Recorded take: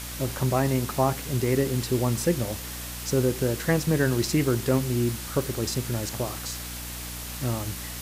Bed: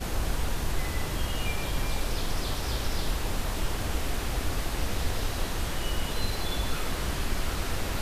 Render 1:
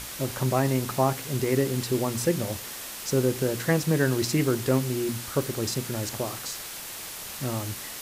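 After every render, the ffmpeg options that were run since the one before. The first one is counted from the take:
-af "bandreject=f=60:t=h:w=6,bandreject=f=120:t=h:w=6,bandreject=f=180:t=h:w=6,bandreject=f=240:t=h:w=6,bandreject=f=300:t=h:w=6"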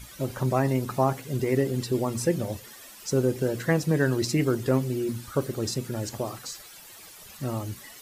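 -af "afftdn=nr=13:nf=-38"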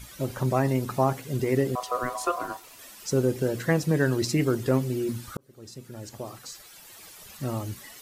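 -filter_complex "[0:a]asettb=1/sr,asplit=3[s0][s1][s2];[s0]atrim=end=1.754[s3];[s1]atrim=start=1.75:end=2.79,asetpts=PTS-STARTPTS,afade=t=in:d=0.004:c=qsin,afade=t=out:st=1.036:d=0.004:c=qsin,aeval=exprs='val(0)*sin(2*PI*870*n/s)':c=same[s4];[s2]atrim=start=2.786[s5];[s3][s4]acrossfade=d=0.004:c1=hsin:c2=qsin[s6];[s6][s5]acrossfade=d=0.004:c1=qsin:c2=hsin,asplit=2[s7][s8];[s7]atrim=end=5.37,asetpts=PTS-STARTPTS,afade=t=out:st=5.366:d=0.004:c=hsin[s9];[s8]atrim=start=5.37,asetpts=PTS-STARTPTS,afade=t=in:d=1.72[s10];[s9][s10]concat=n=2:v=0:a=1"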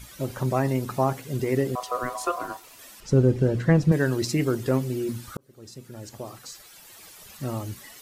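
-filter_complex "[0:a]asettb=1/sr,asplit=3[s0][s1][s2];[s0]atrim=end=3.004[s3];[s1]atrim=start=3:end=3.92,asetpts=PTS-STARTPTS,afade=t=in:d=0.004:c=qsin,afade=t=out:st=0.916:d=0.004:c=qsin,aemphasis=mode=reproduction:type=bsi[s4];[s2]atrim=start=3.916[s5];[s3][s4]acrossfade=d=0.004:c1=hsin:c2=qsin[s6];[s6][s5]acrossfade=d=0.004:c1=qsin:c2=hsin"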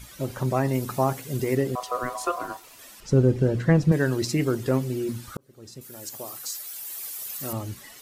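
-filter_complex "[0:a]asettb=1/sr,asplit=3[s0][s1][s2];[s0]atrim=end=0.734[s3];[s1]atrim=start=0.73:end=1.55,asetpts=PTS-STARTPTS,afade=t=in:d=0.004:c=qsin,afade=t=out:st=0.816:d=0.004:c=qsin,highshelf=f=6600:g=7[s4];[s2]atrim=start=1.546[s5];[s3][s4]acrossfade=d=0.004:c1=hsin:c2=qsin[s6];[s6][s5]acrossfade=d=0.004:c1=qsin:c2=hsin,asettb=1/sr,asplit=3[s7][s8][s9];[s7]atrim=end=5.814[s10];[s8]atrim=start=5.81:end=7.53,asetpts=PTS-STARTPTS,afade=t=in:d=0.004:c=qsin,afade=t=out:st=1.716:d=0.004:c=qsin,aemphasis=mode=production:type=bsi[s11];[s9]atrim=start=7.526[s12];[s10][s11]acrossfade=d=0.004:c1=hsin:c2=qsin[s13];[s13][s12]acrossfade=d=0.004:c1=qsin:c2=hsin"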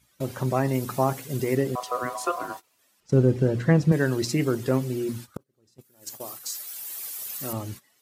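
-af "highpass=84,agate=range=0.112:threshold=0.0126:ratio=16:detection=peak"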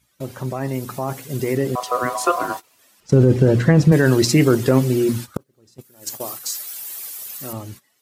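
-af "alimiter=limit=0.178:level=0:latency=1:release=13,dynaudnorm=f=220:g=17:m=3.55"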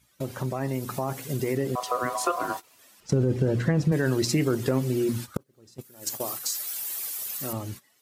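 -af "acompressor=threshold=0.0398:ratio=2"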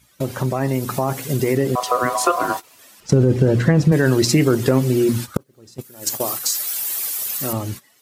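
-af "volume=2.66"

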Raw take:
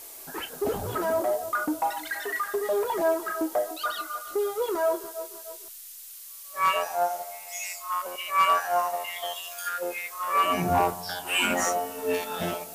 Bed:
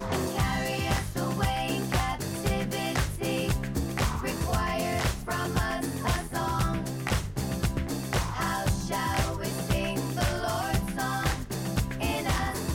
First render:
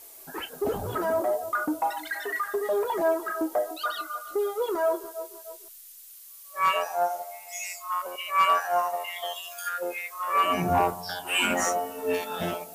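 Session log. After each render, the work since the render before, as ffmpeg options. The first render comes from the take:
-af "afftdn=nr=6:nf=-44"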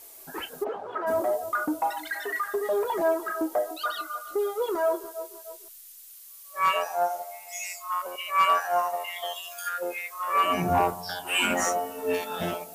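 -filter_complex "[0:a]asplit=3[s0][s1][s2];[s0]afade=t=out:st=0.63:d=0.02[s3];[s1]highpass=520,lowpass=2200,afade=t=in:st=0.63:d=0.02,afade=t=out:st=1.06:d=0.02[s4];[s2]afade=t=in:st=1.06:d=0.02[s5];[s3][s4][s5]amix=inputs=3:normalize=0"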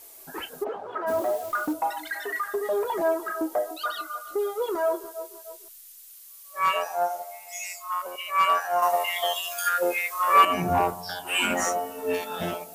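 -filter_complex "[0:a]asettb=1/sr,asplit=3[s0][s1][s2];[s0]atrim=end=1.084[s3];[s1]atrim=start=1.08:end=1.73,asetpts=PTS-STARTPTS,afade=t=in:d=0.004:c=qsin,afade=t=out:st=0.646:d=0.004:c=qsin,acrusher=bits=8:dc=4:mix=0:aa=0.000001[s4];[s2]atrim=start=1.726[s5];[s3][s4]acrossfade=d=0.004:c1=hsin:c2=qsin[s6];[s6][s5]acrossfade=d=0.004:c1=qsin:c2=hsin,asettb=1/sr,asplit=3[s7][s8][s9];[s7]atrim=end=8.824[s10];[s8]atrim=start=8.82:end=10.45,asetpts=PTS-STARTPTS,afade=t=in:d=0.004:c=qsin,afade=t=out:st=1.626:d=0.004:c=qsin,acontrast=82[s11];[s9]atrim=start=10.446[s12];[s10][s11]acrossfade=d=0.004:c1=hsin:c2=qsin[s13];[s13][s12]acrossfade=d=0.004:c1=qsin:c2=hsin"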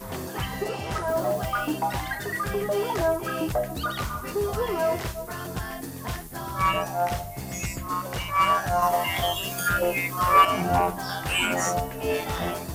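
-filter_complex "[1:a]volume=0.562[s0];[0:a][s0]amix=inputs=2:normalize=0"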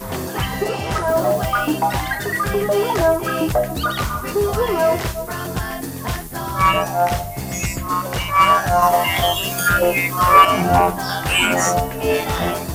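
-af "volume=2.51,alimiter=limit=0.891:level=0:latency=1"

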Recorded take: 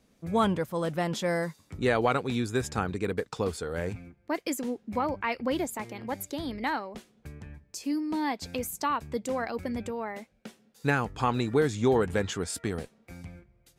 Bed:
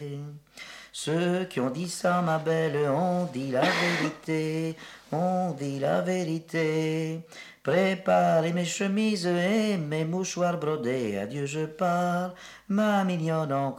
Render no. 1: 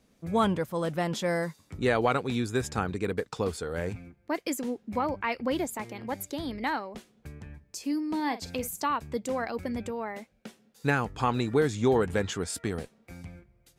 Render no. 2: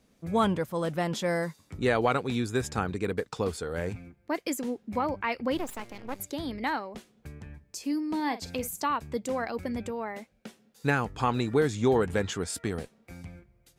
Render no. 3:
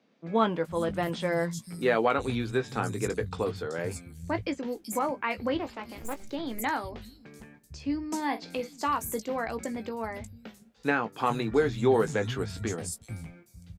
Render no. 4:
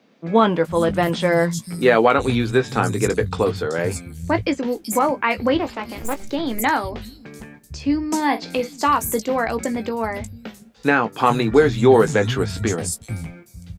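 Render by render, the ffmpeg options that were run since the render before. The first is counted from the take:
-filter_complex "[0:a]asettb=1/sr,asplit=3[s0][s1][s2];[s0]atrim=end=8.154[s3];[s1]atrim=start=8.15:end=8.82,asetpts=PTS-STARTPTS,afade=t=in:d=0.004:c=qsin,afade=t=out:st=0.666:d=0.004:c=qsin,asplit=2[s4][s5];[s5]adelay=47,volume=0.224[s6];[s4][s6]amix=inputs=2:normalize=0,atrim=end_sample=29547[s7];[s2]atrim=start=8.816[s8];[s3][s7]acrossfade=d=0.004:c1=hsin:c2=qsin[s9];[s9][s8]acrossfade=d=0.004:c1=qsin:c2=hsin"
-filter_complex "[0:a]asettb=1/sr,asplit=3[s0][s1][s2];[s0]atrim=end=5.574[s3];[s1]atrim=start=5.57:end=6.2,asetpts=PTS-STARTPTS,afade=t=in:d=0.004:c=qsin,afade=t=out:st=0.626:d=0.004:c=qsin,aeval=exprs='max(val(0),0)':c=same[s4];[s2]atrim=start=6.196[s5];[s3][s4]acrossfade=d=0.004:c1=hsin:c2=qsin[s6];[s6][s5]acrossfade=d=0.004:c1=qsin:c2=hsin"
-filter_complex "[0:a]asplit=2[s0][s1];[s1]adelay=18,volume=0.355[s2];[s0][s2]amix=inputs=2:normalize=0,acrossover=split=160|5000[s3][s4][s5];[s5]adelay=380[s6];[s3]adelay=450[s7];[s7][s4][s6]amix=inputs=3:normalize=0"
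-af "volume=3.35,alimiter=limit=0.708:level=0:latency=1"

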